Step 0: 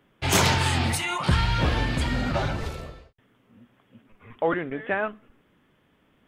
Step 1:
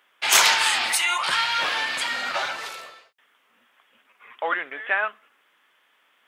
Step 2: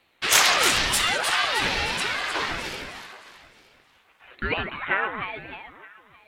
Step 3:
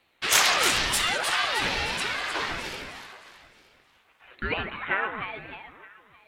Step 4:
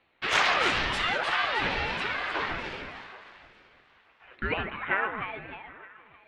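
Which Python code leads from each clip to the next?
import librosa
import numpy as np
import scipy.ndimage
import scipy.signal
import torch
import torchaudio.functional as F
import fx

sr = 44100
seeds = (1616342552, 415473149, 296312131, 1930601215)

y1 = scipy.signal.sosfilt(scipy.signal.butter(2, 1100.0, 'highpass', fs=sr, output='sos'), x)
y1 = y1 * 10.0 ** (7.0 / 20.0)
y2 = fx.echo_alternate(y1, sr, ms=154, hz=1200.0, feedback_pct=65, wet_db=-4.0)
y2 = fx.ring_lfo(y2, sr, carrier_hz=560.0, swing_pct=70, hz=1.1)
y2 = y2 * 10.0 ** (1.5 / 20.0)
y3 = fx.rev_spring(y2, sr, rt60_s=1.4, pass_ms=(32,), chirp_ms=60, drr_db=15.5)
y3 = y3 * 10.0 ** (-2.5 / 20.0)
y4 = scipy.signal.sosfilt(scipy.signal.butter(2, 2800.0, 'lowpass', fs=sr, output='sos'), y3)
y4 = fx.echo_thinned(y4, sr, ms=776, feedback_pct=34, hz=500.0, wet_db=-24)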